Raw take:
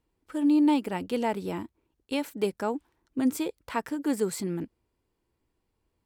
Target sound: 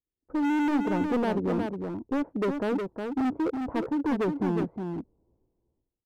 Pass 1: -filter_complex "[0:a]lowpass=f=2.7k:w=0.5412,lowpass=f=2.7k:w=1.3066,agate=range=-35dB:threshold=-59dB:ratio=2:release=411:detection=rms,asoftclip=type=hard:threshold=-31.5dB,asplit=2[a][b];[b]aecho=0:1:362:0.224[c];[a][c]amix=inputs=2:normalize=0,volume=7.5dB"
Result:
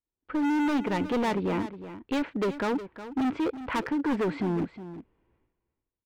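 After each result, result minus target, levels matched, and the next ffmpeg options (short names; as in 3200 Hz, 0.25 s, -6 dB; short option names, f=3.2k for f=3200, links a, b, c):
echo-to-direct -7.5 dB; 2000 Hz band +3.0 dB
-filter_complex "[0:a]lowpass=f=2.7k:w=0.5412,lowpass=f=2.7k:w=1.3066,agate=range=-35dB:threshold=-59dB:ratio=2:release=411:detection=rms,asoftclip=type=hard:threshold=-31.5dB,asplit=2[a][b];[b]aecho=0:1:362:0.531[c];[a][c]amix=inputs=2:normalize=0,volume=7.5dB"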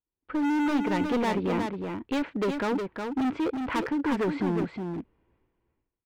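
2000 Hz band +3.0 dB
-filter_complex "[0:a]lowpass=f=760:w=0.5412,lowpass=f=760:w=1.3066,agate=range=-35dB:threshold=-59dB:ratio=2:release=411:detection=rms,asoftclip=type=hard:threshold=-31.5dB,asplit=2[a][b];[b]aecho=0:1:362:0.531[c];[a][c]amix=inputs=2:normalize=0,volume=7.5dB"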